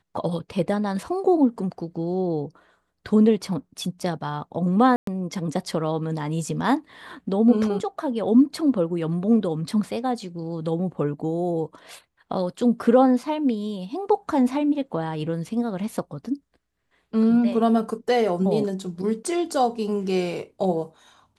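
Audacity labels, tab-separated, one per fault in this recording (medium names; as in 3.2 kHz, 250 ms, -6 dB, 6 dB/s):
4.960000	5.070000	dropout 113 ms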